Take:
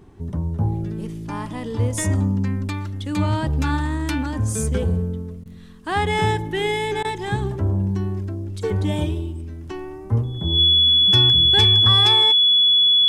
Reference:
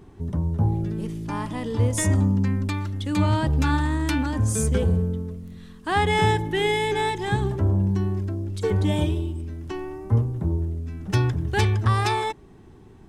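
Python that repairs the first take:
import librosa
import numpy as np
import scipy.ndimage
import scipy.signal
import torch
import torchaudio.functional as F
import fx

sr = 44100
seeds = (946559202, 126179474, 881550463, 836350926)

y = fx.notch(x, sr, hz=3400.0, q=30.0)
y = fx.fix_interpolate(y, sr, at_s=(5.44, 7.03), length_ms=15.0)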